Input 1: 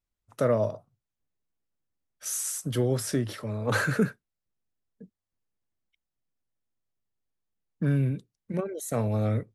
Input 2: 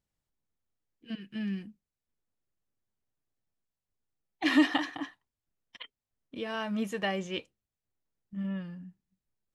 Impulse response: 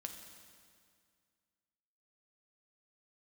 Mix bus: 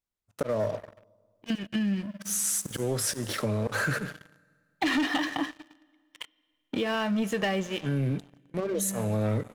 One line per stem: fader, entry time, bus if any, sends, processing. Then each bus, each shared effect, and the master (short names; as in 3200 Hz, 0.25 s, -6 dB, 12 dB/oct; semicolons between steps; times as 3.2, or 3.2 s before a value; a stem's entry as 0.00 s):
+1.5 dB, 0.00 s, send -6 dB, low shelf 90 Hz -9.5 dB; auto swell 0.349 s
+2.0 dB, 0.40 s, send -9.5 dB, auto duck -19 dB, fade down 0.20 s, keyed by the first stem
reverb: on, RT60 2.1 s, pre-delay 5 ms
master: sample leveller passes 3; compressor 4:1, threshold -27 dBFS, peak gain reduction 13 dB